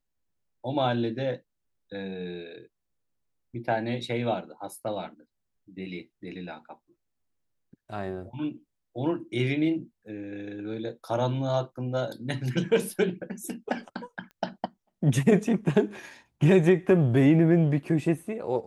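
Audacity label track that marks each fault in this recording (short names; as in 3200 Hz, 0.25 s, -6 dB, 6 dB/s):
14.310000	14.310000	pop -35 dBFS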